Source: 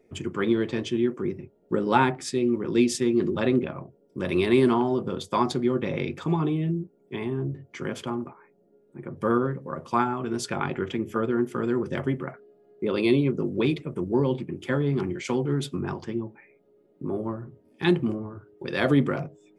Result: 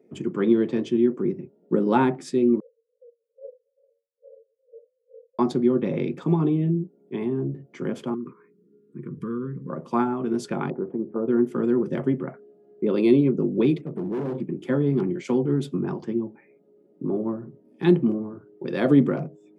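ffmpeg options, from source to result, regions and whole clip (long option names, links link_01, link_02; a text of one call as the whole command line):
ffmpeg -i in.wav -filter_complex "[0:a]asettb=1/sr,asplit=3[link_01][link_02][link_03];[link_01]atrim=end=2.604[link_04];[link_02]atrim=start=2.6:end=5.39,asetpts=PTS-STARTPTS,afade=type=in:duration=0.004:curve=qsin,afade=type=out:start_time=2.786:duration=0.004:curve=qsin,acompressor=threshold=-46dB:ratio=1.5:attack=3.2:release=140:knee=1:detection=peak,asuperpass=centerf=510:order=20:qfactor=3.6,aeval=exprs='val(0)*pow(10,-30*(0.5-0.5*cos(2*PI*2.3*n/s))/20)':channel_layout=same[link_05];[link_03]atrim=start=5.386[link_06];[link_04][link_05]acrossfade=duration=0.004:curve1=hsin:curve2=qsin[link_07];[link_07][link_06]acrossfade=duration=0.004:curve1=qsin:curve2=hsin,asettb=1/sr,asplit=3[link_08][link_09][link_10];[link_08]atrim=end=8.144[link_11];[link_09]atrim=start=8.14:end=9.7,asetpts=PTS-STARTPTS,afade=type=in:duration=0.004:curve=qsin,afade=type=out:start_time=1.556:duration=0.004:curve=qsin,asubboost=boost=5:cutoff=220,acompressor=threshold=-33dB:ratio=2.5:attack=3.2:release=140:knee=1:detection=peak,asuperstop=centerf=700:order=12:qfactor=1.4[link_12];[link_10]atrim=start=9.696[link_13];[link_11][link_12]acrossfade=duration=0.004:curve1=hsin:curve2=qsin[link_14];[link_14][link_13]acrossfade=duration=0.004:curve1=qsin:curve2=hsin,asettb=1/sr,asplit=3[link_15][link_16][link_17];[link_15]atrim=end=10.704[link_18];[link_16]atrim=start=10.7:end=11.28,asetpts=PTS-STARTPTS,afade=type=in:duration=0.004:curve=qsin,afade=type=out:start_time=0.576:duration=0.004:curve=qsin,lowpass=frequency=1000:width=0.5412,lowpass=frequency=1000:width=1.3066,lowshelf=frequency=280:gain=-8[link_19];[link_17]atrim=start=11.276[link_20];[link_18][link_19]acrossfade=duration=0.004:curve1=hsin:curve2=qsin[link_21];[link_21][link_20]acrossfade=duration=0.004:curve1=qsin:curve2=hsin,asettb=1/sr,asplit=3[link_22][link_23][link_24];[link_22]atrim=end=13.814[link_25];[link_23]atrim=start=13.81:end=14.4,asetpts=PTS-STARTPTS,afade=type=in:duration=0.004:curve=qsin,afade=type=out:start_time=0.586:duration=0.004:curve=qsin,equalizer=frequency=5700:width_type=o:width=2:gain=-13,bandreject=frequency=58.25:width_type=h:width=4,bandreject=frequency=116.5:width_type=h:width=4,bandreject=frequency=174.75:width_type=h:width=4,bandreject=frequency=233:width_type=h:width=4,bandreject=frequency=291.25:width_type=h:width=4,bandreject=frequency=349.5:width_type=h:width=4,bandreject=frequency=407.75:width_type=h:width=4,bandreject=frequency=466:width_type=h:width=4,bandreject=frequency=524.25:width_type=h:width=4,bandreject=frequency=582.5:width_type=h:width=4,bandreject=frequency=640.75:width_type=h:width=4,bandreject=frequency=699:width_type=h:width=4,bandreject=frequency=757.25:width_type=h:width=4,bandreject=frequency=815.5:width_type=h:width=4,bandreject=frequency=873.75:width_type=h:width=4,bandreject=frequency=932:width_type=h:width=4,bandreject=frequency=990.25:width_type=h:width=4,bandreject=frequency=1048.5:width_type=h:width=4,bandreject=frequency=1106.75:width_type=h:width=4,asoftclip=type=hard:threshold=-28.5dB[link_26];[link_24]atrim=start=14.396[link_27];[link_25][link_26]acrossfade=duration=0.004:curve1=hsin:curve2=qsin[link_28];[link_28][link_27]acrossfade=duration=0.004:curve1=qsin:curve2=hsin,highpass=frequency=160:width=0.5412,highpass=frequency=160:width=1.3066,tiltshelf=frequency=680:gain=7" out.wav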